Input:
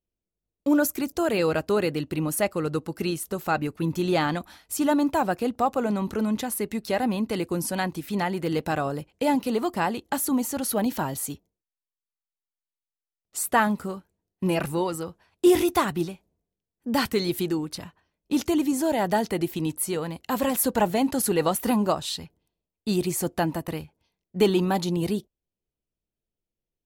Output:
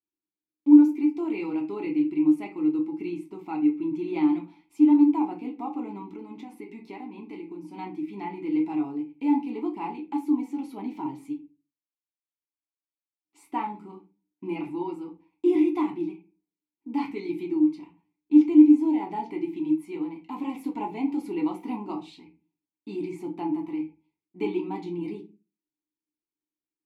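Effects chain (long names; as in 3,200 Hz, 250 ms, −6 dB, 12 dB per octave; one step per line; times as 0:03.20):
formant filter u
convolution reverb RT60 0.30 s, pre-delay 3 ms, DRR −0.5 dB
0:06.02–0:07.78: downward compressor, threshold −38 dBFS, peak gain reduction 8.5 dB
level +2 dB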